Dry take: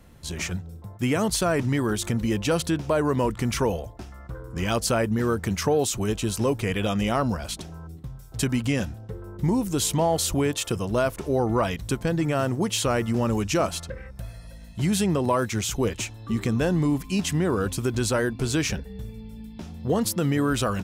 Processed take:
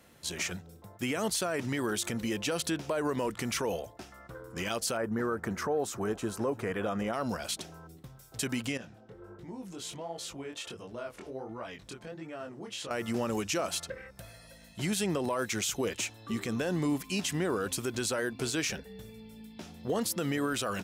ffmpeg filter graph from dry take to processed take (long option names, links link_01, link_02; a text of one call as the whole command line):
ffmpeg -i in.wav -filter_complex "[0:a]asettb=1/sr,asplit=3[link_01][link_02][link_03];[link_01]atrim=end=4.974[link_04];[link_02]atrim=start=4.97:end=7.13,asetpts=PTS-STARTPTS,afade=type=in:duration=0.004:curve=qsin,afade=type=out:start_time=2.156:duration=0.004:curve=qsin,highshelf=frequency=2000:width_type=q:width=1.5:gain=-11,aecho=1:1:341:0.0668,atrim=end_sample=95256[link_05];[link_03]atrim=start=7.126[link_06];[link_04][link_05]acrossfade=duration=0.004:curve1=hsin:curve2=qsin[link_07];[link_07][link_06]acrossfade=duration=0.004:curve1=qsin:curve2=hsin,asettb=1/sr,asplit=3[link_08][link_09][link_10];[link_08]atrim=end=8.774[link_11];[link_09]atrim=start=8.77:end=12.91,asetpts=PTS-STARTPTS,afade=type=in:duration=0.004:curve=qsin,afade=type=out:start_time=4.136:duration=0.004:curve=qsin,aemphasis=mode=reproduction:type=50fm,acompressor=threshold=-33dB:ratio=3:attack=3.2:release=140:knee=1:detection=peak,flanger=delay=17:depth=7.3:speed=1.4[link_12];[link_10]atrim=start=12.906[link_13];[link_11][link_12]acrossfade=duration=0.004:curve1=hsin:curve2=qsin[link_14];[link_14][link_13]acrossfade=duration=0.004:curve1=qsin:curve2=hsin,highpass=frequency=470:poles=1,equalizer=frequency=1000:width_type=o:width=0.63:gain=-3.5,alimiter=limit=-21.5dB:level=0:latency=1:release=65" out.wav